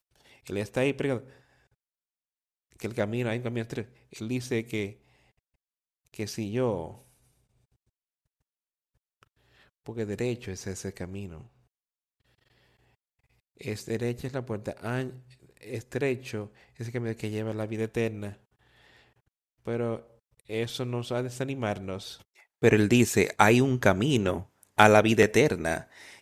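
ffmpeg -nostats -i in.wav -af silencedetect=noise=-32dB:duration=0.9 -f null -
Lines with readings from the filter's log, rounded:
silence_start: 1.18
silence_end: 2.80 | silence_duration: 1.62
silence_start: 4.87
silence_end: 6.14 | silence_duration: 1.27
silence_start: 6.88
silence_end: 9.86 | silence_duration: 2.98
silence_start: 11.26
silence_end: 13.61 | silence_duration: 2.35
silence_start: 18.30
silence_end: 19.68 | silence_duration: 1.38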